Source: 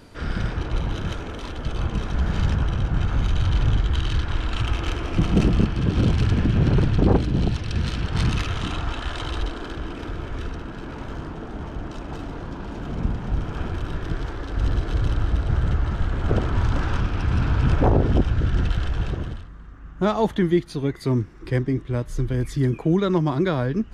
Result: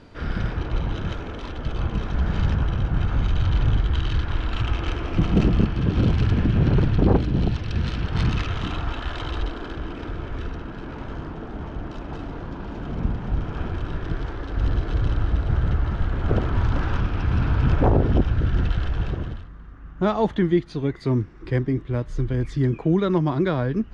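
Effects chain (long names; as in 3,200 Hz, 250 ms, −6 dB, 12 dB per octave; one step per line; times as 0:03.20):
high-frequency loss of the air 110 metres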